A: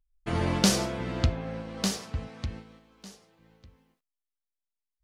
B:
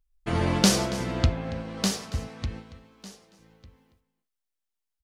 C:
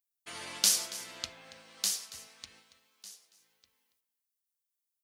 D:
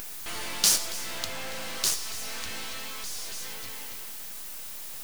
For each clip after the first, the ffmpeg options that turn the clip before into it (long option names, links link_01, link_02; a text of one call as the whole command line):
ffmpeg -i in.wav -af "aecho=1:1:280:0.141,volume=2.5dB" out.wav
ffmpeg -i in.wav -af "aderivative,volume=1.5dB" out.wav
ffmpeg -i in.wav -af "aeval=exprs='val(0)+0.5*0.0398*sgn(val(0))':channel_layout=same,acrusher=bits=5:dc=4:mix=0:aa=0.000001,acompressor=mode=upward:threshold=-40dB:ratio=2.5,volume=1.5dB" out.wav